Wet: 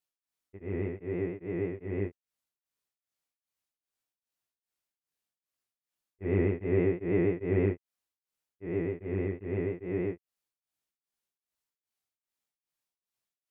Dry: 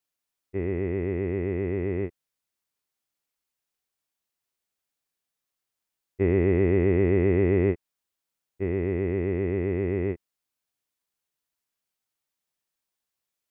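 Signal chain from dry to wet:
chorus effect 0.7 Hz, delay 17 ms, depth 2.5 ms
pitch vibrato 6.2 Hz 33 cents
tremolo along a rectified sine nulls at 2.5 Hz

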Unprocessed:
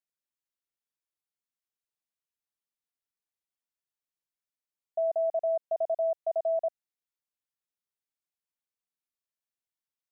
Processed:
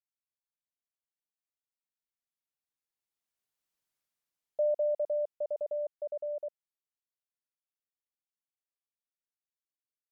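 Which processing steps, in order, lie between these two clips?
source passing by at 0:03.80, 39 m/s, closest 18 metres
level +6 dB

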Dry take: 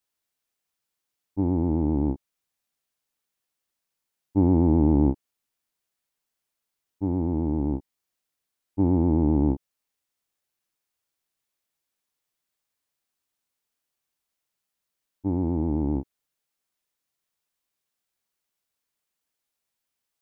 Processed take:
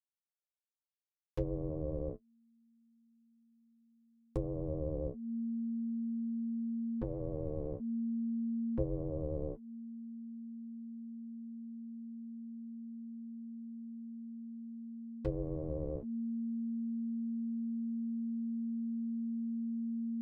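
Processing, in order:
hold until the input has moved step −32.5 dBFS
downward compressor 10 to 1, threshold −28 dBFS, peak gain reduction 13.5 dB
treble cut that deepens with the level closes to 410 Hz, closed at −31 dBFS
flanger 0.29 Hz, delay 8.6 ms, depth 1.6 ms, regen +46%
ring modulation 230 Hz
level +3 dB

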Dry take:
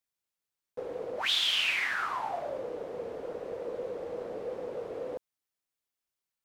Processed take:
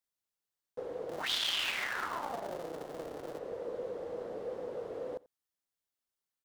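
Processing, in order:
0:01.09–0:03.39: sub-harmonics by changed cycles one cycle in 3, muted
parametric band 2,400 Hz −4.5 dB 0.33 octaves
single-tap delay 87 ms −23.5 dB
level −2.5 dB

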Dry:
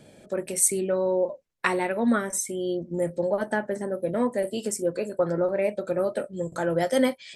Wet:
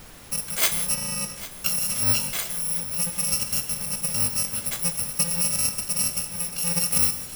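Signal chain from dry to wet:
samples in bit-reversed order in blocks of 128 samples
0:00.94–0:01.66: high-shelf EQ 5,900 Hz −8.5 dB
on a send: feedback echo with a long and a short gap by turns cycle 1,328 ms, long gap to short 1.5 to 1, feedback 50%, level −16 dB
on the sum: reverb whose tail is shaped and stops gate 210 ms flat, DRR 9.5 dB
background noise pink −46 dBFS

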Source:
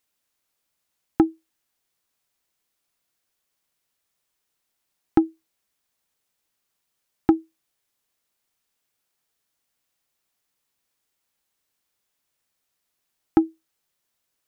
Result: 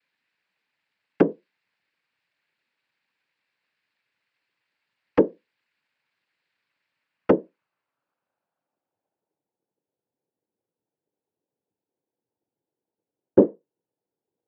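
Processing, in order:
low-pass filter sweep 2,000 Hz → 450 Hz, 0:06.86–0:09.70
cochlear-implant simulation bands 8

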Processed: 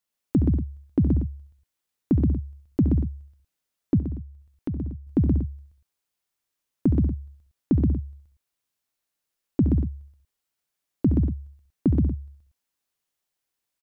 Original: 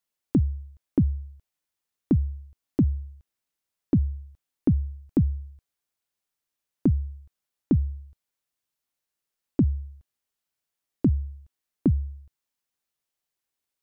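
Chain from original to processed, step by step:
multi-tap delay 69/93/126/189/237 ms −8.5/−18.5/−3/−12.5/−12.5 dB
0:03.99–0:05.07: downward compressor 1.5 to 1, threshold −42 dBFS, peak gain reduction 9 dB

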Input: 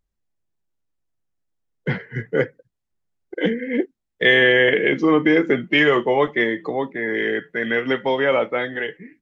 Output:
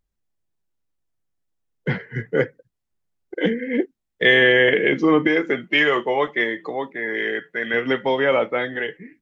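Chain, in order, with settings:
0:05.27–0:07.74: low-shelf EQ 330 Hz −9.5 dB

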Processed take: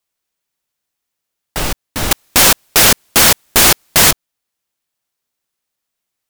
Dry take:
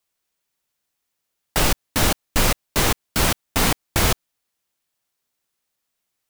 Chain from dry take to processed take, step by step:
0:02.11–0:04.11: sine wavefolder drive 18 dB, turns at −4 dBFS

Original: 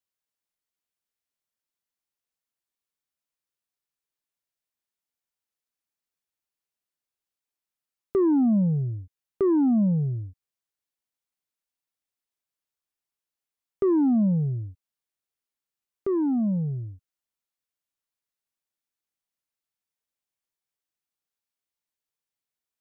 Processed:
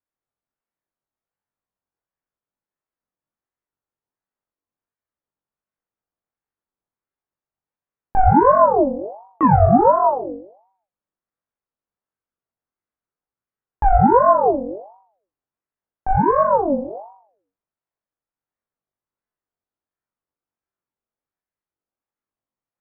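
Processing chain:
low-pass that shuts in the quiet parts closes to 930 Hz, open at −24.5 dBFS
flutter between parallel walls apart 3.6 metres, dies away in 0.6 s
ring modulator whose carrier an LFO sweeps 620 Hz, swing 40%, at 1.4 Hz
level +6.5 dB

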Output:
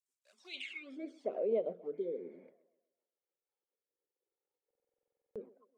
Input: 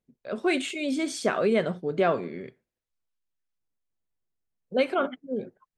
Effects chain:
mu-law and A-law mismatch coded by mu
high-pass filter 190 Hz 24 dB per octave
parametric band 2,200 Hz +3.5 dB 0.3 octaves
flanger swept by the level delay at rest 2.3 ms, full sweep at −20 dBFS
rotating-speaker cabinet horn 6.3 Hz, later 0.85 Hz, at 0:02.78
tape delay 128 ms, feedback 46%, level −20.5 dB, low-pass 5,100 Hz
healed spectral selection 0:01.97–0:02.44, 530–3,100 Hz after
band-pass filter sweep 7,900 Hz → 540 Hz, 0:00.34–0:01.05
buffer that repeats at 0:04.66, samples 2,048, times 14
level −3 dB

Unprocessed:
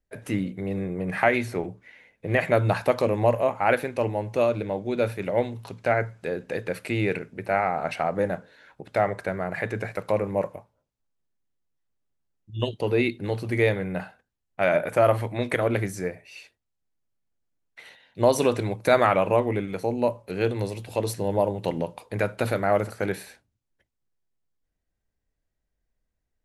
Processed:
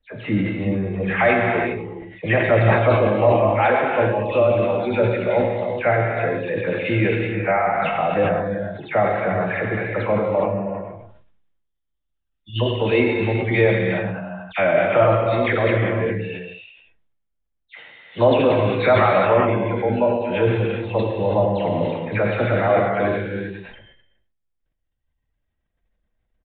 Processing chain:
every frequency bin delayed by itself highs early, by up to 173 ms
downsampling to 8,000 Hz
in parallel at −1.5 dB: brickwall limiter −17 dBFS, peak gain reduction 9 dB
on the sum: reverb reduction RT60 2 s
on a send: single-tap delay 102 ms −13 dB
on the sum: reverb whose tail is shaped and stops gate 430 ms flat, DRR 0 dB
level that may fall only so fast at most 50 dB per second

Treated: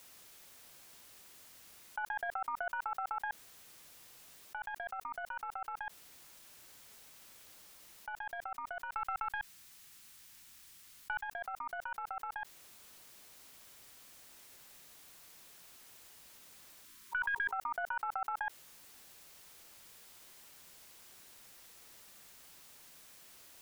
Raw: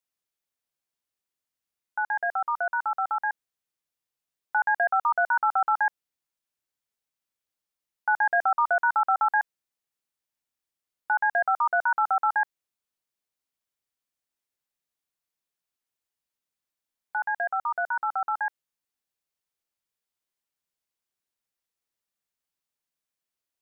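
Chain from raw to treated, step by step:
stylus tracing distortion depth 0.03 ms
0:08.94–0:11.23: parametric band 540 Hz −12 dB 1.7 octaves
0:16.85–0:17.52: time-frequency box erased 420–940 Hz
compressor whose output falls as the input rises −47 dBFS, ratio −1
level +8.5 dB

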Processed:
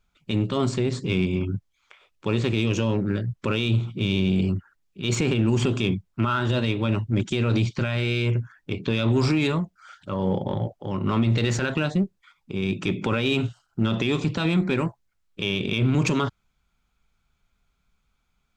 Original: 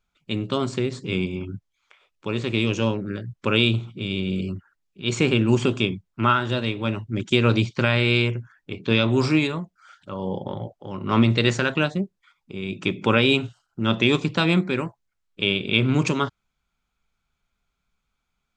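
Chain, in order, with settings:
low-shelf EQ 180 Hz +5 dB
brickwall limiter −15 dBFS, peak gain reduction 12 dB
in parallel at −7.5 dB: asymmetric clip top −26 dBFS, bottom −20 dBFS

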